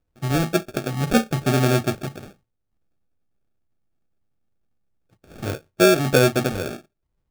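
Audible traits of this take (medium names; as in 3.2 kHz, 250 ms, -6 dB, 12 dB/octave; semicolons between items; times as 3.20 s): phasing stages 6, 1.8 Hz, lowest notch 690–2600 Hz; aliases and images of a low sample rate 1 kHz, jitter 0%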